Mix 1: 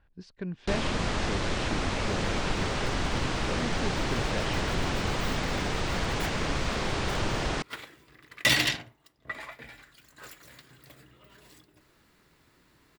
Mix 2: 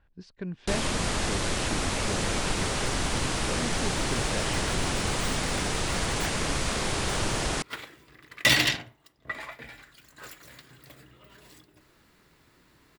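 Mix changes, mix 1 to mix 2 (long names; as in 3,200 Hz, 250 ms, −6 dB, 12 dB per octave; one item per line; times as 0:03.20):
first sound: remove high-frequency loss of the air 110 metres
second sound: send +8.0 dB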